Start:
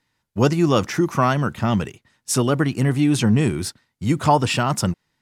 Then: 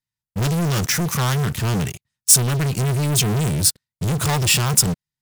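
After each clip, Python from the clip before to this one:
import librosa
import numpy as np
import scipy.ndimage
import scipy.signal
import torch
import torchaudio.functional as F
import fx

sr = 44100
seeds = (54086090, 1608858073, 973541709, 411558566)

y = fx.low_shelf_res(x, sr, hz=210.0, db=9.5, q=1.5)
y = fx.leveller(y, sr, passes=5)
y = F.preemphasis(torch.from_numpy(y), 0.8).numpy()
y = y * librosa.db_to_amplitude(-3.0)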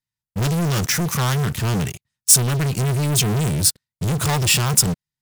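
y = x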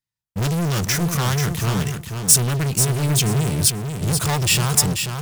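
y = fx.echo_feedback(x, sr, ms=487, feedback_pct=20, wet_db=-6.5)
y = y * librosa.db_to_amplitude(-1.0)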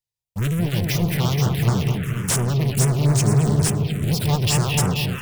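y = fx.echo_bbd(x, sr, ms=216, stages=4096, feedback_pct=60, wet_db=-4.5)
y = fx.env_phaser(y, sr, low_hz=240.0, high_hz=4200.0, full_db=-12.0)
y = fx.slew_limit(y, sr, full_power_hz=760.0)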